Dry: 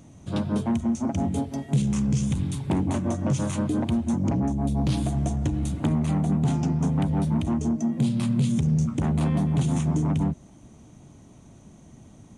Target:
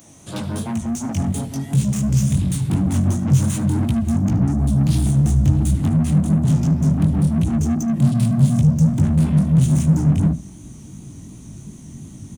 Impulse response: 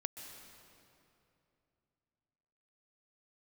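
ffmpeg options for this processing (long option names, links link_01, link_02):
-filter_complex "[0:a]aemphasis=mode=production:type=bsi,bandreject=frequency=60:width_type=h:width=6,bandreject=frequency=120:width_type=h:width=6,bandreject=frequency=180:width_type=h:width=6,bandreject=frequency=240:width_type=h:width=6,asubboost=boost=10:cutoff=190,asplit=2[link_01][link_02];[link_02]alimiter=limit=-14.5dB:level=0:latency=1,volume=-1dB[link_03];[link_01][link_03]amix=inputs=2:normalize=0,flanger=delay=16:depth=6.6:speed=2.8,acrossover=split=180[link_04][link_05];[link_05]asoftclip=type=tanh:threshold=-28.5dB[link_06];[link_04][link_06]amix=inputs=2:normalize=0,aecho=1:1:75:0.119,volume=3.5dB"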